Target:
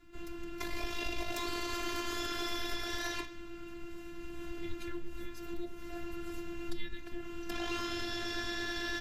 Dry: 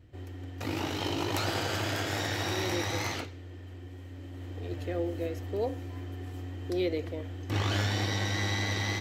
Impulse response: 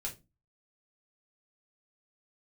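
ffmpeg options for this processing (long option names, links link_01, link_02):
-af "highpass=frequency=110:width=0.5412,highpass=frequency=110:width=1.3066,acompressor=threshold=-40dB:ratio=4,afftfilt=real='hypot(re,im)*cos(PI*b)':imag='0':win_size=512:overlap=0.75,afreqshift=-340,volume=9dB"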